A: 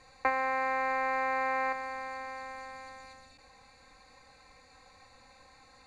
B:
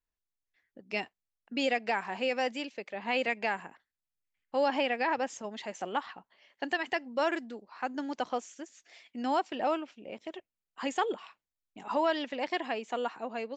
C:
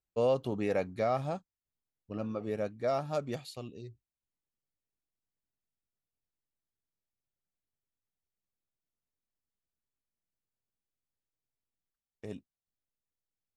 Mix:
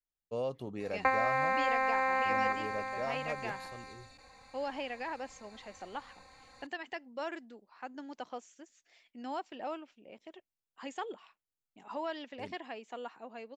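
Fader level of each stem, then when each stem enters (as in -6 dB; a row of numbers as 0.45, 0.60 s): +0.5, -9.5, -7.5 dB; 0.80, 0.00, 0.15 s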